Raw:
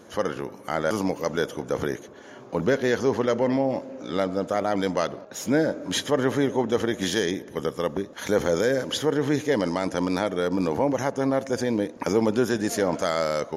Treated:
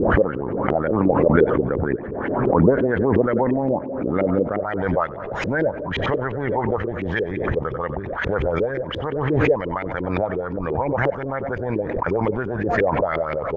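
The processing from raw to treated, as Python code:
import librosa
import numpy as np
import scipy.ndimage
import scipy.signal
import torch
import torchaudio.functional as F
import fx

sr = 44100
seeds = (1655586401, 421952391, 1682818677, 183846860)

y = fx.riaa(x, sr, side='playback')
y = fx.hpss(y, sr, part='harmonic', gain_db=-7)
y = fx.peak_eq(y, sr, hz=fx.steps((0.0, 5000.0), (4.59, 260.0)), db=-11.5, octaves=1.4)
y = fx.filter_lfo_lowpass(y, sr, shape='saw_up', hz=5.7, low_hz=330.0, high_hz=2700.0, q=4.7)
y = fx.echo_thinned(y, sr, ms=93, feedback_pct=40, hz=1000.0, wet_db=-19.5)
y = fx.pre_swell(y, sr, db_per_s=30.0)
y = y * librosa.db_to_amplitude(-1.0)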